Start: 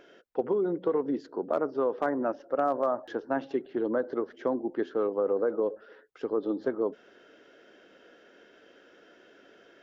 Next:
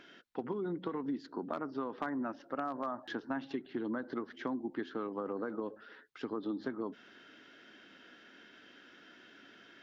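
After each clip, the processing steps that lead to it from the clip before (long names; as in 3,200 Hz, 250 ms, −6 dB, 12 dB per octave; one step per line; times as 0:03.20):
graphic EQ with 10 bands 125 Hz +5 dB, 250 Hz +7 dB, 500 Hz −10 dB, 1,000 Hz +4 dB, 2,000 Hz +5 dB, 4,000 Hz +8 dB
downward compressor 5 to 1, threshold −30 dBFS, peak gain reduction 8.5 dB
level −3.5 dB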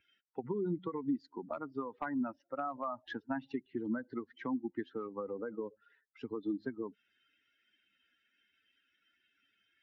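spectral dynamics exaggerated over time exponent 2
bass and treble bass +5 dB, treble −11 dB
level +3 dB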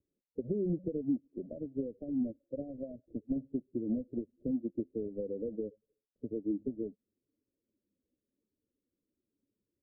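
each half-wave held at its own peak
Butterworth low-pass 570 Hz 72 dB per octave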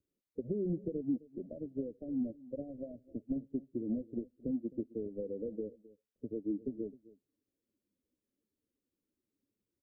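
single-tap delay 262 ms −19.5 dB
level −2 dB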